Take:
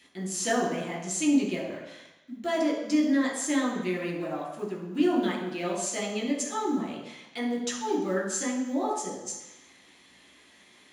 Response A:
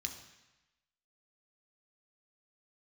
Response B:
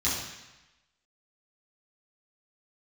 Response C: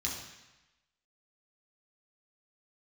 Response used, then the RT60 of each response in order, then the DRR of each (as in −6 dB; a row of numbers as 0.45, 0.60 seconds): C; 1.0, 1.0, 1.0 seconds; 4.0, −9.5, −3.5 decibels